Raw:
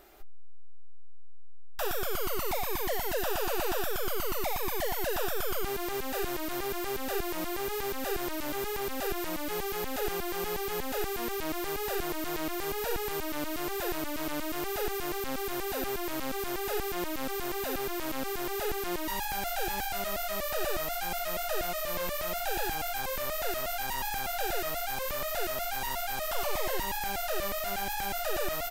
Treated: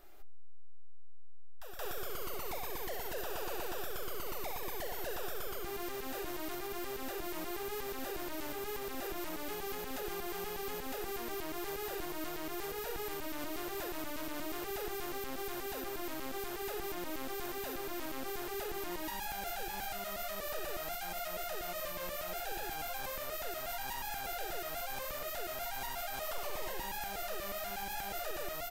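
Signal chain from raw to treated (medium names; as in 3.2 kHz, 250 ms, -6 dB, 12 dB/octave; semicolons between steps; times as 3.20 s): de-hum 74.89 Hz, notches 11; peak limiter -26.5 dBFS, peak gain reduction 4.5 dB; reverse echo 175 ms -9 dB; trim -6 dB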